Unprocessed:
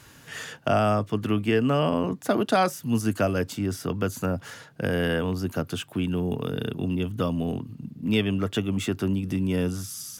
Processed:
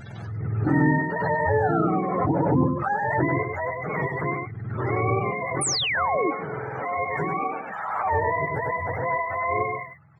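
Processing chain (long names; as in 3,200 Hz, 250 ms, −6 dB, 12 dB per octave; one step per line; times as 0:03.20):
frequency axis turned over on the octave scale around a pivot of 440 Hz
on a send: single-tap delay 99 ms −4.5 dB
on the sum: sound drawn into the spectrogram fall, 0:05.61–0:06.31, 280–10,000 Hz −25 dBFS
background raised ahead of every attack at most 30 dB per second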